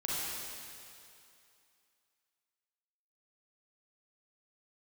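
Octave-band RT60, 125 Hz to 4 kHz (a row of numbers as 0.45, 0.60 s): 2.3, 2.3, 2.5, 2.6, 2.6, 2.5 s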